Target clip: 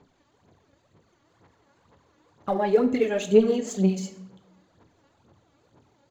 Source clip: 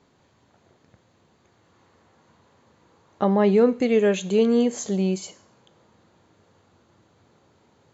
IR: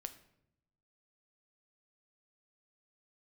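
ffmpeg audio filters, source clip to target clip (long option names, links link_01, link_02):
-filter_complex "[0:a]aphaser=in_gain=1:out_gain=1:delay=3.6:decay=0.7:speed=1.6:type=sinusoidal,atempo=1.3[link_01];[1:a]atrim=start_sample=2205[link_02];[link_01][link_02]afir=irnorm=-1:irlink=0,volume=-2dB"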